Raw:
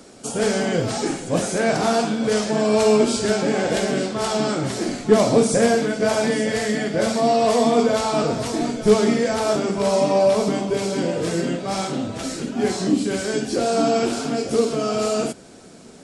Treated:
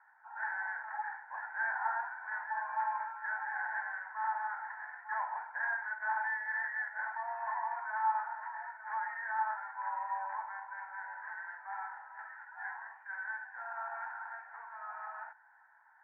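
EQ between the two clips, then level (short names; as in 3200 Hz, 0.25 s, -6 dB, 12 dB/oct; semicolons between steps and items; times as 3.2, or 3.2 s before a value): Chebyshev band-pass 860–1800 Hz, order 4; band-pass 1200 Hz, Q 0.68; fixed phaser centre 1200 Hz, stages 6; 0.0 dB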